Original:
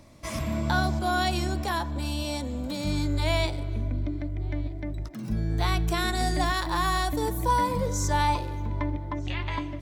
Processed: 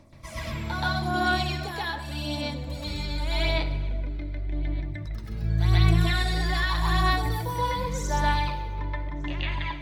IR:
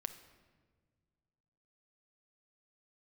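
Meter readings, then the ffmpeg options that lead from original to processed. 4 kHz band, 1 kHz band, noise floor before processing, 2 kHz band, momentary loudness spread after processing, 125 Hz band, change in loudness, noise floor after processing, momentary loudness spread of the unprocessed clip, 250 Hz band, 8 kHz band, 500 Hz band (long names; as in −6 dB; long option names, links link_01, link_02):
+2.0 dB, −1.5 dB, −35 dBFS, +2.5 dB, 10 LU, +2.5 dB, +0.5 dB, −36 dBFS, 8 LU, −2.5 dB, −5.0 dB, −2.5 dB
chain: -filter_complex "[0:a]aphaser=in_gain=1:out_gain=1:delay=2.4:decay=0.55:speed=0.86:type=sinusoidal,asplit=2[link_01][link_02];[link_02]equalizer=frequency=125:width_type=o:width=1:gain=8,equalizer=frequency=250:width_type=o:width=1:gain=-6,equalizer=frequency=2000:width_type=o:width=1:gain=6,equalizer=frequency=4000:width_type=o:width=1:gain=8,equalizer=frequency=8000:width_type=o:width=1:gain=-11[link_03];[1:a]atrim=start_sample=2205,adelay=127[link_04];[link_03][link_04]afir=irnorm=-1:irlink=0,volume=4.5dB[link_05];[link_01][link_05]amix=inputs=2:normalize=0,volume=-8.5dB"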